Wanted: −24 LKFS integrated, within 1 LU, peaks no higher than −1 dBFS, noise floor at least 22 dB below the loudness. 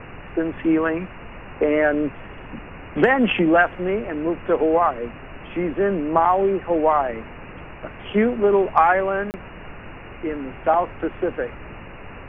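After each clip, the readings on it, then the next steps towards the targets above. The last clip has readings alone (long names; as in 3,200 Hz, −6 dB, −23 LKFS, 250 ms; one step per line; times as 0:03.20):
number of dropouts 1; longest dropout 29 ms; background noise floor −39 dBFS; target noise floor −43 dBFS; integrated loudness −21.0 LKFS; sample peak −2.5 dBFS; target loudness −24.0 LKFS
→ repair the gap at 0:09.31, 29 ms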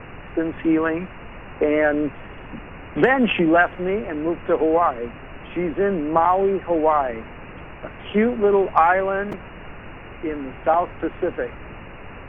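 number of dropouts 0; background noise floor −39 dBFS; target noise floor −43 dBFS
→ noise reduction from a noise print 6 dB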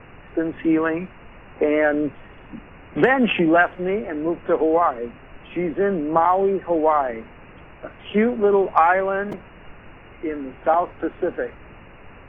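background noise floor −45 dBFS; integrated loudness −21.0 LKFS; sample peak −3.0 dBFS; target loudness −24.0 LKFS
→ level −3 dB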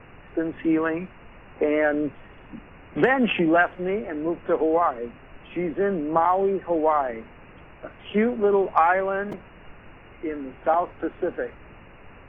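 integrated loudness −24.0 LKFS; sample peak −6.0 dBFS; background noise floor −48 dBFS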